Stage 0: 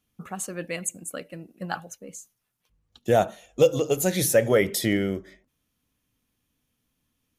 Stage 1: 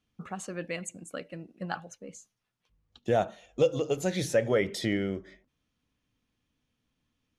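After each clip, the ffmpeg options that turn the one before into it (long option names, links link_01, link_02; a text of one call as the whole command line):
ffmpeg -i in.wav -filter_complex "[0:a]lowpass=5400,asplit=2[link_01][link_02];[link_02]acompressor=threshold=-30dB:ratio=6,volume=-2dB[link_03];[link_01][link_03]amix=inputs=2:normalize=0,volume=-7dB" out.wav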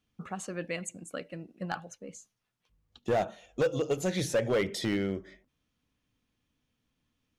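ffmpeg -i in.wav -af "asoftclip=type=hard:threshold=-22dB" out.wav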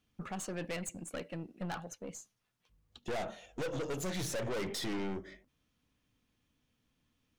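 ffmpeg -i in.wav -af "aeval=exprs='(tanh(70.8*val(0)+0.4)-tanh(0.4))/70.8':channel_layout=same,volume=2.5dB" out.wav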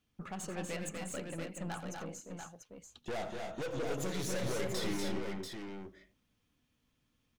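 ffmpeg -i in.wav -af "aecho=1:1:87|243|275|690:0.2|0.562|0.376|0.501,volume=-2dB" out.wav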